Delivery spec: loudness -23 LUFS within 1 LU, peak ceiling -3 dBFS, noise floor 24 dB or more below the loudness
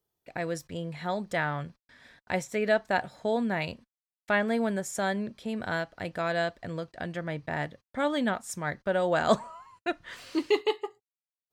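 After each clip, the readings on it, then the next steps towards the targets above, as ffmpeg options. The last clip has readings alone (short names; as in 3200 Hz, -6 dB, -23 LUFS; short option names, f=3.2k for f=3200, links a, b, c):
loudness -30.5 LUFS; peak -9.5 dBFS; loudness target -23.0 LUFS
-> -af "volume=7.5dB,alimiter=limit=-3dB:level=0:latency=1"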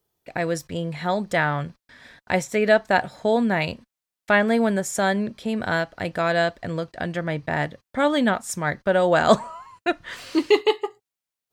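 loudness -23.0 LUFS; peak -3.0 dBFS; noise floor -88 dBFS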